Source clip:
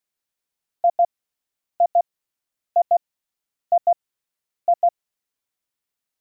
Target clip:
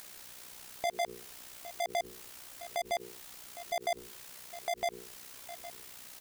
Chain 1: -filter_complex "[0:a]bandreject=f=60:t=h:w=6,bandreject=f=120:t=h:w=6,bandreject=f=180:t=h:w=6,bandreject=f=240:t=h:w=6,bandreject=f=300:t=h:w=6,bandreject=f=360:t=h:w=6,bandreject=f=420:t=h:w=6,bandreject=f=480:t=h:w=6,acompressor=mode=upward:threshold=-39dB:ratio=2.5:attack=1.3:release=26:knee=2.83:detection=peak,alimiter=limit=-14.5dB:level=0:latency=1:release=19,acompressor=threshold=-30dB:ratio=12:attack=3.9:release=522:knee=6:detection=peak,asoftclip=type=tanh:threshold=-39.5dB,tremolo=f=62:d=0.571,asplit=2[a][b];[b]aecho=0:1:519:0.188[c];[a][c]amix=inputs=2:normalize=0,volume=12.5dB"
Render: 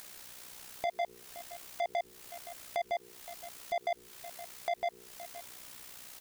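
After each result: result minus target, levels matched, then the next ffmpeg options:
compressor: peak gain reduction +14 dB; echo 0.291 s early
-filter_complex "[0:a]bandreject=f=60:t=h:w=6,bandreject=f=120:t=h:w=6,bandreject=f=180:t=h:w=6,bandreject=f=240:t=h:w=6,bandreject=f=300:t=h:w=6,bandreject=f=360:t=h:w=6,bandreject=f=420:t=h:w=6,bandreject=f=480:t=h:w=6,acompressor=mode=upward:threshold=-39dB:ratio=2.5:attack=1.3:release=26:knee=2.83:detection=peak,alimiter=limit=-14.5dB:level=0:latency=1:release=19,asoftclip=type=tanh:threshold=-39.5dB,tremolo=f=62:d=0.571,asplit=2[a][b];[b]aecho=0:1:519:0.188[c];[a][c]amix=inputs=2:normalize=0,volume=12.5dB"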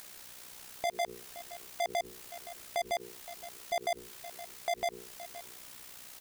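echo 0.291 s early
-filter_complex "[0:a]bandreject=f=60:t=h:w=6,bandreject=f=120:t=h:w=6,bandreject=f=180:t=h:w=6,bandreject=f=240:t=h:w=6,bandreject=f=300:t=h:w=6,bandreject=f=360:t=h:w=6,bandreject=f=420:t=h:w=6,bandreject=f=480:t=h:w=6,acompressor=mode=upward:threshold=-39dB:ratio=2.5:attack=1.3:release=26:knee=2.83:detection=peak,alimiter=limit=-14.5dB:level=0:latency=1:release=19,asoftclip=type=tanh:threshold=-39.5dB,tremolo=f=62:d=0.571,asplit=2[a][b];[b]aecho=0:1:810:0.188[c];[a][c]amix=inputs=2:normalize=0,volume=12.5dB"

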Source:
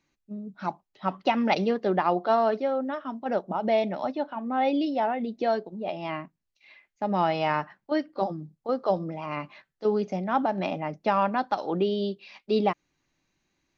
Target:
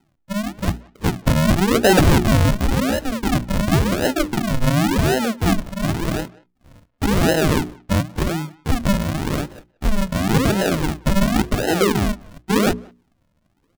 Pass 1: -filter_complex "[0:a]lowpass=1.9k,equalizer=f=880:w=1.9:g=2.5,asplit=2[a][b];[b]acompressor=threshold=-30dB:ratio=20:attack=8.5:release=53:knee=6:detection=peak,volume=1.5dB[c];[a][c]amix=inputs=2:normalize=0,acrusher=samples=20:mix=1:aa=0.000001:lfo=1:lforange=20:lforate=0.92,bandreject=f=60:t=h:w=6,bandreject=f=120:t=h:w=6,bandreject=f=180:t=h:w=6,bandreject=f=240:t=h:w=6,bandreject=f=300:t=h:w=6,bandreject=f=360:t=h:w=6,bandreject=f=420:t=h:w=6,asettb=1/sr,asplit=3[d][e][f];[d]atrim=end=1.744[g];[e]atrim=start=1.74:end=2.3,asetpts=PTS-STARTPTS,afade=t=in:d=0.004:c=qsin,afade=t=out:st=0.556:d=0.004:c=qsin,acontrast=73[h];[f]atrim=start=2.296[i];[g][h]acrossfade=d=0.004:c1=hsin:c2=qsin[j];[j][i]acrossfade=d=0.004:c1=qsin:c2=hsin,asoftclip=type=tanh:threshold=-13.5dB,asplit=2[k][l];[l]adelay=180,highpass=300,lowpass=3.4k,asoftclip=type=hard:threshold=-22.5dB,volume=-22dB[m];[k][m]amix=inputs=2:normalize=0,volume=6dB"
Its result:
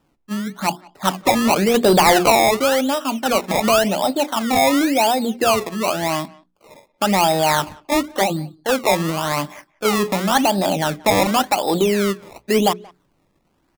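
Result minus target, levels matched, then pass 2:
decimation with a swept rate: distortion -24 dB
-filter_complex "[0:a]lowpass=1.9k,equalizer=f=880:w=1.9:g=2.5,asplit=2[a][b];[b]acompressor=threshold=-30dB:ratio=20:attack=8.5:release=53:knee=6:detection=peak,volume=1.5dB[c];[a][c]amix=inputs=2:normalize=0,acrusher=samples=76:mix=1:aa=0.000001:lfo=1:lforange=76:lforate=0.92,bandreject=f=60:t=h:w=6,bandreject=f=120:t=h:w=6,bandreject=f=180:t=h:w=6,bandreject=f=240:t=h:w=6,bandreject=f=300:t=h:w=6,bandreject=f=360:t=h:w=6,bandreject=f=420:t=h:w=6,asettb=1/sr,asplit=3[d][e][f];[d]atrim=end=1.744[g];[e]atrim=start=1.74:end=2.3,asetpts=PTS-STARTPTS,afade=t=in:d=0.004:c=qsin,afade=t=out:st=0.556:d=0.004:c=qsin,acontrast=73[h];[f]atrim=start=2.296[i];[g][h]acrossfade=d=0.004:c1=hsin:c2=qsin[j];[j][i]acrossfade=d=0.004:c1=qsin:c2=hsin,asoftclip=type=tanh:threshold=-13.5dB,asplit=2[k][l];[l]adelay=180,highpass=300,lowpass=3.4k,asoftclip=type=hard:threshold=-22.5dB,volume=-22dB[m];[k][m]amix=inputs=2:normalize=0,volume=6dB"

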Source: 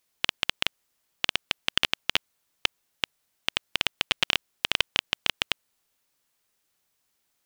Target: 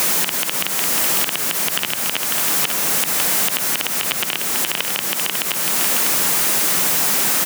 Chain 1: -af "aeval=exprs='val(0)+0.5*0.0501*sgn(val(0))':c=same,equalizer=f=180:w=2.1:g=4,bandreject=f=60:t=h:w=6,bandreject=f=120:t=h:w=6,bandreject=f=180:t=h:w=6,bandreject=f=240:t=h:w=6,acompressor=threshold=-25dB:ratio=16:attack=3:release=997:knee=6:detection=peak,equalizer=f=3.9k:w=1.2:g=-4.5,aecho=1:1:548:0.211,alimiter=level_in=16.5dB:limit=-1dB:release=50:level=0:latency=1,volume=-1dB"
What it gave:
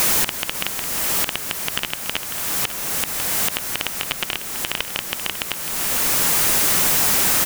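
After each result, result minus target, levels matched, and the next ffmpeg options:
compressor: peak gain reduction +9 dB; 125 Hz band +4.0 dB
-af "aeval=exprs='val(0)+0.5*0.0501*sgn(val(0))':c=same,equalizer=f=180:w=2.1:g=4,bandreject=f=60:t=h:w=6,bandreject=f=120:t=h:w=6,bandreject=f=180:t=h:w=6,bandreject=f=240:t=h:w=6,acompressor=threshold=-15.5dB:ratio=16:attack=3:release=997:knee=6:detection=peak,equalizer=f=3.9k:w=1.2:g=-4.5,aecho=1:1:548:0.211,alimiter=level_in=16.5dB:limit=-1dB:release=50:level=0:latency=1,volume=-1dB"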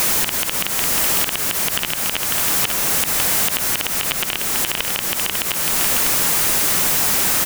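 125 Hz band +3.5 dB
-af "aeval=exprs='val(0)+0.5*0.0501*sgn(val(0))':c=same,highpass=f=140:w=0.5412,highpass=f=140:w=1.3066,equalizer=f=180:w=2.1:g=4,bandreject=f=60:t=h:w=6,bandreject=f=120:t=h:w=6,bandreject=f=180:t=h:w=6,bandreject=f=240:t=h:w=6,acompressor=threshold=-15.5dB:ratio=16:attack=3:release=997:knee=6:detection=peak,equalizer=f=3.9k:w=1.2:g=-4.5,aecho=1:1:548:0.211,alimiter=level_in=16.5dB:limit=-1dB:release=50:level=0:latency=1,volume=-1dB"

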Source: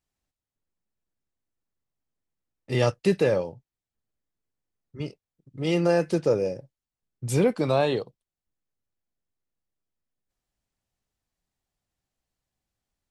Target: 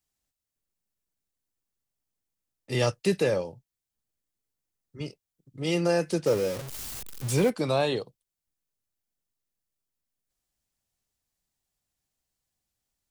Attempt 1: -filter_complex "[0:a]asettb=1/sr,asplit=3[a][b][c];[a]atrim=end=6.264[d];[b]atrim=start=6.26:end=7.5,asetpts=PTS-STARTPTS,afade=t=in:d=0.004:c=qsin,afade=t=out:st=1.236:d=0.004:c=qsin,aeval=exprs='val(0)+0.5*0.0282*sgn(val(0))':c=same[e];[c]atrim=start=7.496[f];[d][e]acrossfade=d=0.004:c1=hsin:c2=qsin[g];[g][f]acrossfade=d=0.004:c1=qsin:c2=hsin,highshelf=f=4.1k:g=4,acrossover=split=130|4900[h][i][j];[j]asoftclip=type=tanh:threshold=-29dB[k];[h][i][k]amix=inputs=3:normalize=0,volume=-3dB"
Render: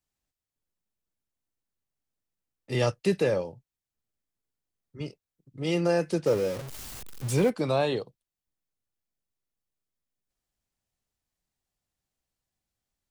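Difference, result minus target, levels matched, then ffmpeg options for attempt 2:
8000 Hz band -3.5 dB
-filter_complex "[0:a]asettb=1/sr,asplit=3[a][b][c];[a]atrim=end=6.264[d];[b]atrim=start=6.26:end=7.5,asetpts=PTS-STARTPTS,afade=t=in:d=0.004:c=qsin,afade=t=out:st=1.236:d=0.004:c=qsin,aeval=exprs='val(0)+0.5*0.0282*sgn(val(0))':c=same[e];[c]atrim=start=7.496[f];[d][e]acrossfade=d=0.004:c1=hsin:c2=qsin[g];[g][f]acrossfade=d=0.004:c1=qsin:c2=hsin,highshelf=f=4.1k:g=10.5,acrossover=split=130|4900[h][i][j];[j]asoftclip=type=tanh:threshold=-29dB[k];[h][i][k]amix=inputs=3:normalize=0,volume=-3dB"

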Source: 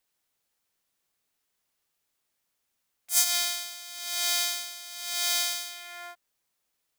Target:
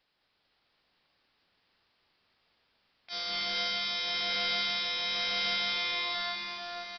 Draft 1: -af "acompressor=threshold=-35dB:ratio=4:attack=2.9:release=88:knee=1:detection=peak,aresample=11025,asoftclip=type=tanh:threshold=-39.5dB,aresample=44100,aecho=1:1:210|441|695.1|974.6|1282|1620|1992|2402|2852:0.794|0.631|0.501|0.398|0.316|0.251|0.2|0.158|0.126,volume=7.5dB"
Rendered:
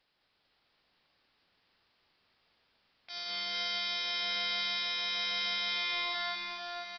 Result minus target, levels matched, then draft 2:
compressor: peak gain reduction +8.5 dB
-af "acompressor=threshold=-23.5dB:ratio=4:attack=2.9:release=88:knee=1:detection=peak,aresample=11025,asoftclip=type=tanh:threshold=-39.5dB,aresample=44100,aecho=1:1:210|441|695.1|974.6|1282|1620|1992|2402|2852:0.794|0.631|0.501|0.398|0.316|0.251|0.2|0.158|0.126,volume=7.5dB"

